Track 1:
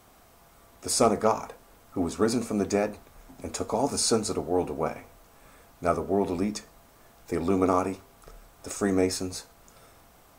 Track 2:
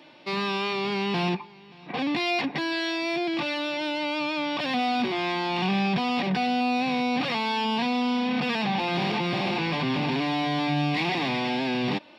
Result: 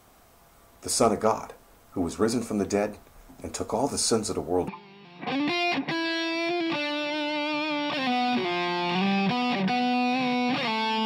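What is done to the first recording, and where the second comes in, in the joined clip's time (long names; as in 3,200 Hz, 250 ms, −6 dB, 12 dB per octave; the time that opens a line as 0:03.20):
track 1
0:04.68: continue with track 2 from 0:01.35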